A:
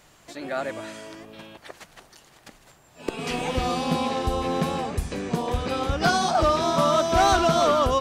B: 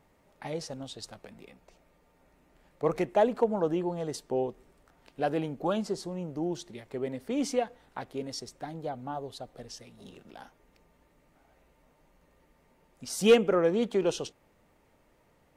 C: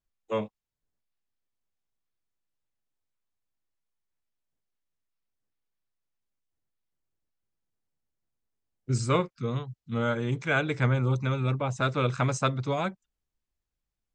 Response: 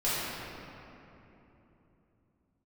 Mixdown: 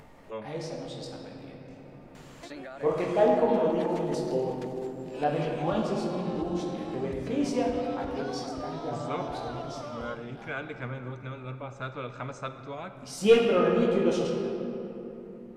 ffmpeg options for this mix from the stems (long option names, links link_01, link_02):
-filter_complex "[0:a]acrossover=split=5000[link_01][link_02];[link_02]acompressor=threshold=-47dB:ratio=4:attack=1:release=60[link_03];[link_01][link_03]amix=inputs=2:normalize=0,alimiter=limit=-23.5dB:level=0:latency=1:release=165,acompressor=threshold=-37dB:ratio=6,adelay=2150,volume=-1.5dB[link_04];[1:a]flanger=delay=20:depth=2.8:speed=1.5,volume=-1.5dB,asplit=2[link_05][link_06];[link_06]volume=-7.5dB[link_07];[2:a]bass=frequency=250:gain=-5,treble=frequency=4000:gain=-4,volume=-10dB,asplit=3[link_08][link_09][link_10];[link_09]volume=-18.5dB[link_11];[link_10]apad=whole_len=686631[link_12];[link_05][link_12]sidechaincompress=threshold=-46dB:ratio=8:attack=16:release=126[link_13];[3:a]atrim=start_sample=2205[link_14];[link_07][link_11]amix=inputs=2:normalize=0[link_15];[link_15][link_14]afir=irnorm=-1:irlink=0[link_16];[link_04][link_13][link_08][link_16]amix=inputs=4:normalize=0,highshelf=frequency=7800:gain=-9,acompressor=mode=upward:threshold=-40dB:ratio=2.5"